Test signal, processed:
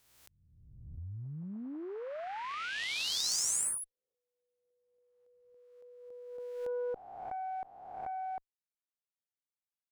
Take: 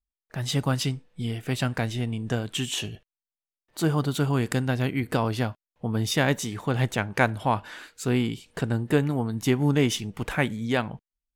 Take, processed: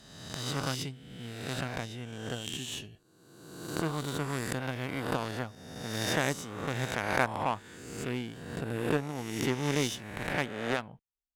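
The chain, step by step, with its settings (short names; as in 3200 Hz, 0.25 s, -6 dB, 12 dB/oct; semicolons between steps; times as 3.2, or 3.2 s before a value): spectral swells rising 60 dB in 1.42 s; added harmonics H 6 -30 dB, 7 -22 dB, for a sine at -4 dBFS; gain -7.5 dB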